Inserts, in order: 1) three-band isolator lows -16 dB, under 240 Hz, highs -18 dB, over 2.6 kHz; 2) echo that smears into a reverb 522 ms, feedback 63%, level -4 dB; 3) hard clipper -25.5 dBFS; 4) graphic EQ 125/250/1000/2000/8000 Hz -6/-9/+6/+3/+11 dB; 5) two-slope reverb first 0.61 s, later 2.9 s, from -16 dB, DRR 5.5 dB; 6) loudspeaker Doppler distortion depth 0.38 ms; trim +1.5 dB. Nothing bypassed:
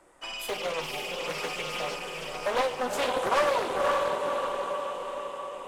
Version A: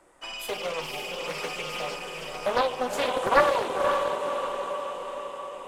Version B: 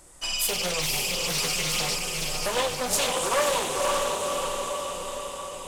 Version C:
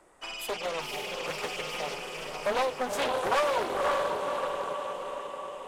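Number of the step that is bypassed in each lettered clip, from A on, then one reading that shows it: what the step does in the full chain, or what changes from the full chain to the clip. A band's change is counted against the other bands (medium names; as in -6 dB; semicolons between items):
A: 3, distortion -11 dB; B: 1, 8 kHz band +13.5 dB; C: 5, loudness change -1.5 LU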